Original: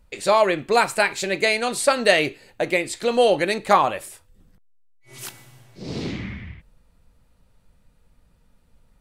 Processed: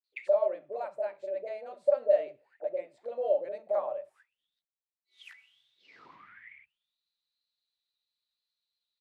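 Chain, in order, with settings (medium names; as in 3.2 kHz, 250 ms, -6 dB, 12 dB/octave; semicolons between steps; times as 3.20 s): three bands offset in time mids, highs, lows 40/80 ms, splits 210/630 Hz; auto-wah 590–4300 Hz, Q 16, down, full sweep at -23.5 dBFS; trim +2.5 dB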